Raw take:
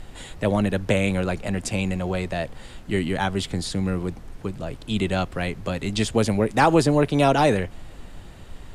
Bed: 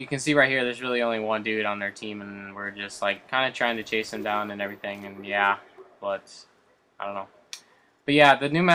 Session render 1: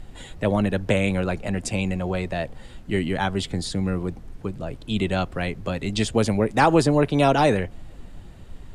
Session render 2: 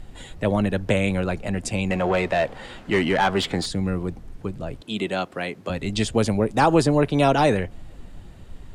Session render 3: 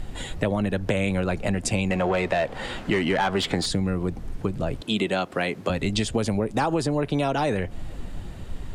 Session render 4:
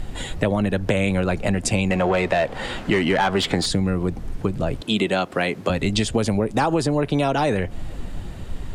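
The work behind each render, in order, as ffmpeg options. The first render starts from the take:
ffmpeg -i in.wav -af "afftdn=noise_reduction=6:noise_floor=-43" out.wav
ffmpeg -i in.wav -filter_complex "[0:a]asettb=1/sr,asplit=3[link_01][link_02][link_03];[link_01]atrim=end=1.904[link_04];[link_02]atrim=start=1.9:end=3.66,asetpts=PTS-STARTPTS,afade=type=in:duration=0.004:curve=qsin,afade=type=out:start_time=1.756:duration=0.004:curve=qsin,asplit=2[link_05][link_06];[link_06]highpass=frequency=720:poles=1,volume=19dB,asoftclip=type=tanh:threshold=-10dB[link_07];[link_05][link_07]amix=inputs=2:normalize=0,lowpass=frequency=2300:poles=1,volume=-6dB[link_08];[link_03]atrim=start=3.656[link_09];[link_04][link_08]acrossfade=duration=0.004:curve1=hsin:curve2=qsin[link_10];[link_10][link_09]acrossfade=duration=0.004:curve1=qsin:curve2=hsin,asettb=1/sr,asplit=3[link_11][link_12][link_13];[link_11]atrim=end=4.814[link_14];[link_12]atrim=start=4.81:end=5.7,asetpts=PTS-STARTPTS,afade=type=in:duration=0.004:curve=qsin,afade=type=out:start_time=0.886:duration=0.004:curve=qsin,highpass=230[link_15];[link_13]atrim=start=5.696[link_16];[link_14][link_15]acrossfade=duration=0.004:curve1=hsin:curve2=qsin[link_17];[link_17][link_16]acrossfade=duration=0.004:curve1=qsin:curve2=hsin,asettb=1/sr,asplit=3[link_18][link_19][link_20];[link_18]atrim=end=6.304[link_21];[link_19]atrim=start=6.3:end=6.73,asetpts=PTS-STARTPTS,afade=type=in:duration=0.004:curve=qsin,afade=type=out:start_time=0.426:duration=0.004:curve=qsin,equalizer=frequency=2000:width=2.6:gain=-6[link_22];[link_20]atrim=start=6.726[link_23];[link_21][link_22]acrossfade=duration=0.004:curve1=hsin:curve2=qsin[link_24];[link_24][link_23]acrossfade=duration=0.004:curve1=qsin:curve2=hsin" out.wav
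ffmpeg -i in.wav -filter_complex "[0:a]asplit=2[link_01][link_02];[link_02]alimiter=limit=-13.5dB:level=0:latency=1,volume=1dB[link_03];[link_01][link_03]amix=inputs=2:normalize=0,acompressor=threshold=-21dB:ratio=5" out.wav
ffmpeg -i in.wav -af "volume=3.5dB" out.wav

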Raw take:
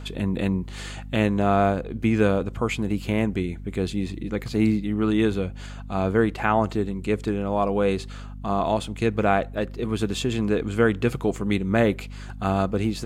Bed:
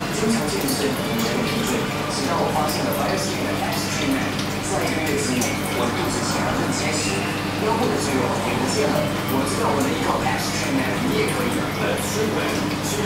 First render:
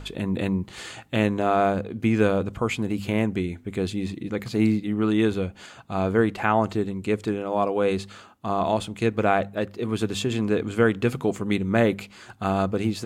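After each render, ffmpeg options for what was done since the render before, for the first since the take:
ffmpeg -i in.wav -af "bandreject=frequency=50:width_type=h:width=4,bandreject=frequency=100:width_type=h:width=4,bandreject=frequency=150:width_type=h:width=4,bandreject=frequency=200:width_type=h:width=4,bandreject=frequency=250:width_type=h:width=4" out.wav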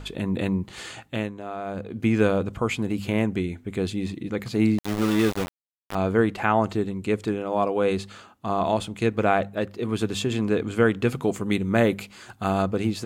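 ffmpeg -i in.wav -filter_complex "[0:a]asettb=1/sr,asplit=3[link_01][link_02][link_03];[link_01]atrim=end=4.784[link_04];[link_02]atrim=start=4.78:end=5.95,asetpts=PTS-STARTPTS,afade=type=in:duration=0.004:curve=qsin,afade=type=out:start_time=1.166:duration=0.004:curve=qsin,aeval=exprs='val(0)*gte(abs(val(0)),0.0596)':channel_layout=same[link_05];[link_03]atrim=start=5.946[link_06];[link_04][link_05]acrossfade=duration=0.004:curve1=hsin:curve2=qsin[link_07];[link_07][link_06]acrossfade=duration=0.004:curve1=qsin:curve2=hsin,asettb=1/sr,asplit=3[link_08][link_09][link_10];[link_08]atrim=end=11.224[link_11];[link_09]atrim=start=11.22:end=12.62,asetpts=PTS-STARTPTS,afade=type=in:duration=0.004:curve=qsin,afade=type=out:start_time=1.396:duration=0.004:curve=qsin,highshelf=frequency=8200:gain=6.5[link_12];[link_10]atrim=start=12.616[link_13];[link_11][link_12]acrossfade=duration=0.004:curve1=hsin:curve2=qsin[link_14];[link_14][link_13]acrossfade=duration=0.004:curve1=qsin:curve2=hsin,asplit=3[link_15][link_16][link_17];[link_15]atrim=end=1.32,asetpts=PTS-STARTPTS,afade=type=out:start_time=0.99:duration=0.33:silence=0.237137[link_18];[link_16]atrim=start=1.32:end=1.65,asetpts=PTS-STARTPTS,volume=-12.5dB[link_19];[link_17]atrim=start=1.65,asetpts=PTS-STARTPTS,afade=type=in:duration=0.33:silence=0.237137[link_20];[link_18][link_19][link_20]concat=n=3:v=0:a=1" out.wav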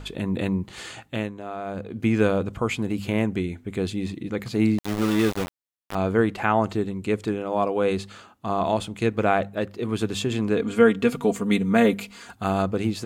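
ffmpeg -i in.wav -filter_complex "[0:a]asettb=1/sr,asplit=3[link_01][link_02][link_03];[link_01]atrim=end=10.574[link_04];[link_02]atrim=start=10.57:end=12.35,asetpts=PTS-STARTPTS,afade=type=in:duration=0.004:curve=qsin,afade=type=out:start_time=1.776:duration=0.004:curve=qsin,aecho=1:1:4.3:0.75,atrim=end_sample=78498[link_05];[link_03]atrim=start=12.346[link_06];[link_04][link_05]acrossfade=duration=0.004:curve1=hsin:curve2=qsin[link_07];[link_07][link_06]acrossfade=duration=0.004:curve1=qsin:curve2=hsin" out.wav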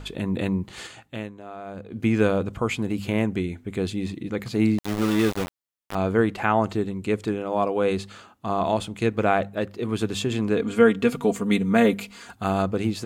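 ffmpeg -i in.wav -filter_complex "[0:a]asplit=3[link_01][link_02][link_03];[link_01]atrim=end=0.872[link_04];[link_02]atrim=start=0.868:end=1.922,asetpts=PTS-STARTPTS,volume=-5dB[link_05];[link_03]atrim=start=1.918[link_06];[link_04][link_05]acrossfade=duration=0.004:curve1=hsin:curve2=hsin[link_07];[link_07][link_06]acrossfade=duration=0.004:curve1=hsin:curve2=hsin" out.wav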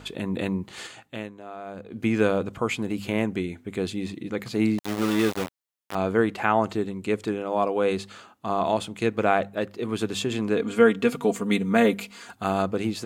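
ffmpeg -i in.wav -af "highpass=frequency=180:poles=1" out.wav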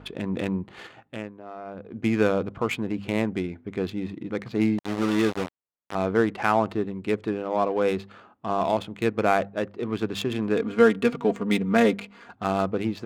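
ffmpeg -i in.wav -af "adynamicsmooth=sensitivity=4.5:basefreq=1600" out.wav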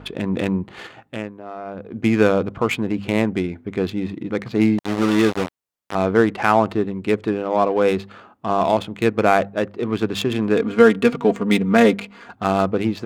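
ffmpeg -i in.wav -af "volume=6dB,alimiter=limit=-1dB:level=0:latency=1" out.wav

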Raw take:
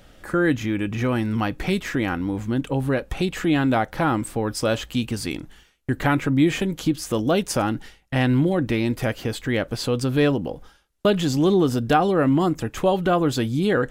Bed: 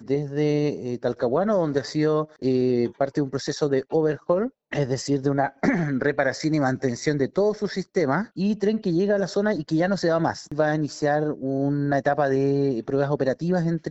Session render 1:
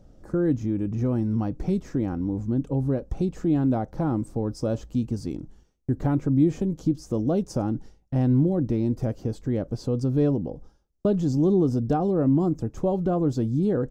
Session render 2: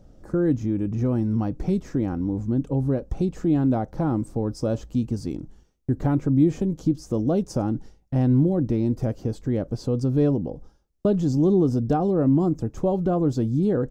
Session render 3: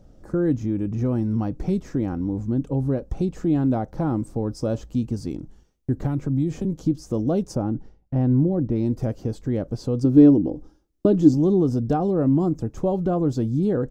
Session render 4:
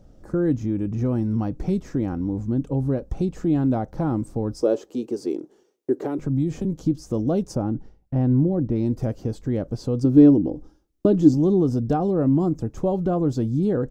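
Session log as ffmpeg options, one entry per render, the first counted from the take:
ffmpeg -i in.wav -af "firequalizer=gain_entry='entry(150,0);entry(1800,-23);entry(3100,-24);entry(5600,-10);entry(10000,-21)':delay=0.05:min_phase=1" out.wav
ffmpeg -i in.wav -af "volume=1.5dB" out.wav
ffmpeg -i in.wav -filter_complex "[0:a]asettb=1/sr,asplit=3[link_01][link_02][link_03];[link_01]atrim=end=6.044[link_04];[link_02]atrim=start=6.04:end=6.65,asetpts=PTS-STARTPTS,afade=type=in:duration=0.004:curve=qsin,afade=type=out:start_time=0.606:duration=0.004:curve=qsin,acrossover=split=180|3000[link_05][link_06][link_07];[link_06]acompressor=threshold=-28dB:ratio=2.5:attack=3.2:release=140:knee=2.83:detection=peak[link_08];[link_05][link_08][link_07]amix=inputs=3:normalize=0[link_09];[link_03]atrim=start=6.646[link_10];[link_04][link_09]acrossfade=duration=0.004:curve1=hsin:curve2=qsin[link_11];[link_11][link_10]acrossfade=duration=0.004:curve1=qsin:curve2=hsin,asplit=3[link_12][link_13][link_14];[link_12]afade=type=out:start_time=7.54:duration=0.02[link_15];[link_13]lowpass=frequency=1400:poles=1,afade=type=in:start_time=7.54:duration=0.02,afade=type=out:start_time=8.75:duration=0.02[link_16];[link_14]afade=type=in:start_time=8.75:duration=0.02[link_17];[link_15][link_16][link_17]amix=inputs=3:normalize=0,asettb=1/sr,asplit=3[link_18][link_19][link_20];[link_18]atrim=end=10.044[link_21];[link_19]atrim=start=10.04:end=11.34,asetpts=PTS-STARTPTS,afade=type=in:duration=0.004:curve=qsin,afade=type=out:start_time=1.296:duration=0.004:curve=qsin,equalizer=frequency=310:width=3.6:gain=14.5[link_22];[link_20]atrim=start=11.336[link_23];[link_21][link_22]acrossfade=duration=0.004:curve1=hsin:curve2=qsin[link_24];[link_24][link_23]acrossfade=duration=0.004:curve1=qsin:curve2=hsin" out.wav
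ffmpeg -i in.wav -filter_complex "[0:a]asettb=1/sr,asplit=3[link_01][link_02][link_03];[link_01]atrim=end=4.624[link_04];[link_02]atrim=start=4.62:end=6.19,asetpts=PTS-STARTPTS,afade=type=in:duration=0.004:curve=qsin,afade=type=out:start_time=1.566:duration=0.004:curve=qsin,highpass=frequency=390:width_type=q:width=4.1[link_05];[link_03]atrim=start=6.186[link_06];[link_04][link_05]acrossfade=duration=0.004:curve1=hsin:curve2=qsin[link_07];[link_07][link_06]acrossfade=duration=0.004:curve1=qsin:curve2=hsin" out.wav

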